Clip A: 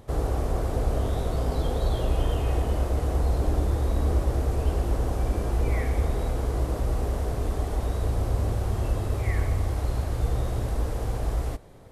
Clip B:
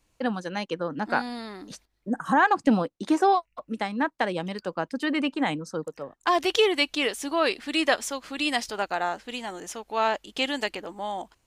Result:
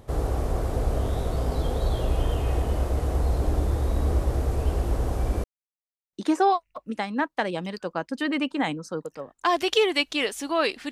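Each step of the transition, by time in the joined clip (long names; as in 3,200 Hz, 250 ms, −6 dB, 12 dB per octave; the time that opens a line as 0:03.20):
clip A
0:05.44–0:06.13: silence
0:06.13: continue with clip B from 0:02.95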